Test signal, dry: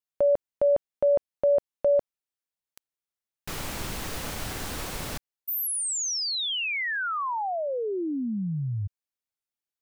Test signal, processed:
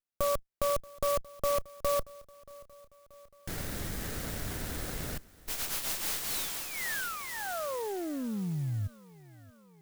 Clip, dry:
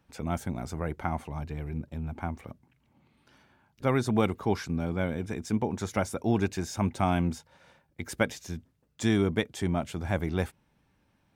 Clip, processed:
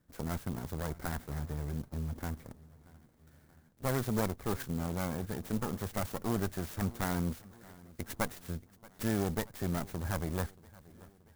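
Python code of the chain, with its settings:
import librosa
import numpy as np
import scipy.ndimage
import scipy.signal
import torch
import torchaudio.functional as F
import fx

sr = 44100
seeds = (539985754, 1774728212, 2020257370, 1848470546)

p1 = fx.lower_of_two(x, sr, delay_ms=0.49)
p2 = fx.dynamic_eq(p1, sr, hz=320.0, q=1.0, threshold_db=-41.0, ratio=4.0, max_db=-5)
p3 = fx.level_steps(p2, sr, step_db=20)
p4 = p2 + F.gain(torch.from_numpy(p3), 0.5).numpy()
p5 = fx.peak_eq(p4, sr, hz=2600.0, db=-13.5, octaves=0.39)
p6 = p5 + fx.echo_feedback(p5, sr, ms=630, feedback_pct=59, wet_db=-22, dry=0)
p7 = fx.clock_jitter(p6, sr, seeds[0], jitter_ms=0.068)
y = F.gain(torch.from_numpy(p7), -4.5).numpy()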